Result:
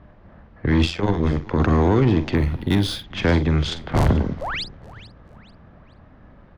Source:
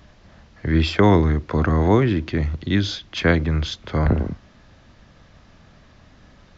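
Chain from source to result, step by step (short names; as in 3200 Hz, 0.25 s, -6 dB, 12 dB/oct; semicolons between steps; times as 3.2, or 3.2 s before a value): 3.65–4.07 cycle switcher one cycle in 3, inverted; low-pass opened by the level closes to 1300 Hz, open at -15 dBFS; dynamic EQ 1600 Hz, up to -5 dB, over -36 dBFS, Q 1.3; limiter -11.5 dBFS, peak gain reduction 7 dB; 0.85–1.6 AM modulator 87 Hz, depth 70%; 4.41–4.64 painted sound rise 470–5400 Hz -30 dBFS; added harmonics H 4 -17 dB, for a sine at -11.5 dBFS; doubler 46 ms -12.5 dB; on a send: frequency-shifting echo 0.434 s, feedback 38%, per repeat -92 Hz, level -18.5 dB; 2.36–3.04 on the sum: decimation joined by straight lines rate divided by 3×; gain +2.5 dB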